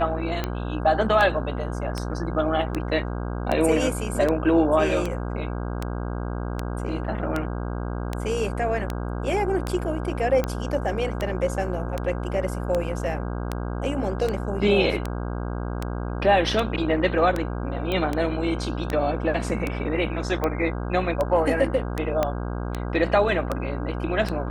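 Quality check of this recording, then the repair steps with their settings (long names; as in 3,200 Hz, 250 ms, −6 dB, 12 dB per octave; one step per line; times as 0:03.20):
mains buzz 60 Hz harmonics 27 −29 dBFS
scratch tick 78 rpm −12 dBFS
0:17.92: click −15 dBFS
0:22.23: click −9 dBFS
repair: click removal
hum removal 60 Hz, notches 27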